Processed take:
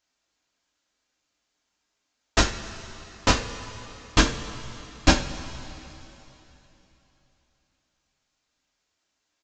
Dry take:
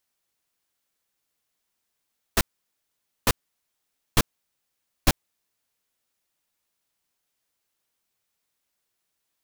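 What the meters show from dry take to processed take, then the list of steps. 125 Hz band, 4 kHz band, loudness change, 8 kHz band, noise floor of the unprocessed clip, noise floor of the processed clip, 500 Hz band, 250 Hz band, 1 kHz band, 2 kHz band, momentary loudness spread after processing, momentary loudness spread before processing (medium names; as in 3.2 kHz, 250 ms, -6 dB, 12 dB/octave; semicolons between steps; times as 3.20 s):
+3.5 dB, +5.5 dB, +3.0 dB, +2.0 dB, -79 dBFS, -79 dBFS, +5.5 dB, +7.0 dB, +5.5 dB, +6.0 dB, 19 LU, 7 LU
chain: two-slope reverb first 0.31 s, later 3.4 s, from -18 dB, DRR -1 dB; resampled via 16 kHz; trim +2 dB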